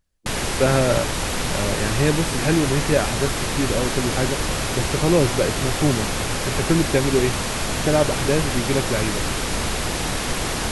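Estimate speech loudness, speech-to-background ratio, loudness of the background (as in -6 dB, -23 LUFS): -23.0 LUFS, 1.0 dB, -24.0 LUFS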